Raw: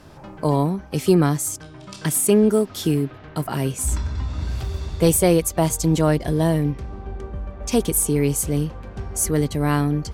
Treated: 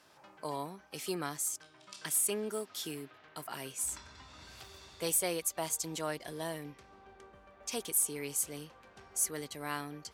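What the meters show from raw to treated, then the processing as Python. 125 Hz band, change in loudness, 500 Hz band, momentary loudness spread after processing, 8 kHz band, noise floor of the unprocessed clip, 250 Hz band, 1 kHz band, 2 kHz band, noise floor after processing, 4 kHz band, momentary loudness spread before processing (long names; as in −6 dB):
−28.0 dB, −14.0 dB, −18.5 dB, 20 LU, −8.5 dB, −42 dBFS, −23.5 dB, −14.0 dB, −10.5 dB, −61 dBFS, −9.0 dB, 14 LU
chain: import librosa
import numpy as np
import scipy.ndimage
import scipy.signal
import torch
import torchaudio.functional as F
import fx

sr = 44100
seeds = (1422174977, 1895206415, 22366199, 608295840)

y = fx.highpass(x, sr, hz=1400.0, slope=6)
y = y * librosa.db_to_amplitude(-8.5)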